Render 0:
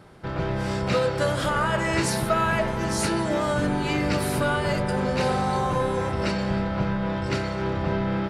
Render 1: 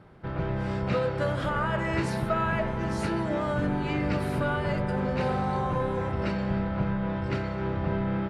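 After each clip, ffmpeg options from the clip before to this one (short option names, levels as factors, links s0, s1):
-af "bass=f=250:g=3,treble=f=4000:g=-13,volume=0.596"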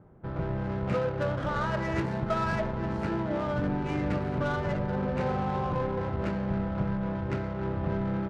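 -af "adynamicsmooth=sensitivity=3.5:basefreq=1000,volume=0.841"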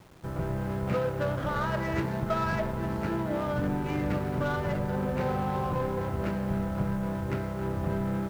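-af "acrusher=bits=8:mix=0:aa=0.000001"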